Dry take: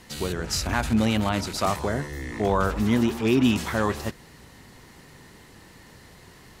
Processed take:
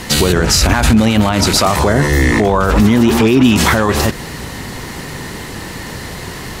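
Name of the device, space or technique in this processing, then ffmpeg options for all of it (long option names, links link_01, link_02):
loud club master: -af "acompressor=threshold=-25dB:ratio=2,asoftclip=type=hard:threshold=-15dB,alimiter=level_in=23.5dB:limit=-1dB:release=50:level=0:latency=1,volume=-1dB"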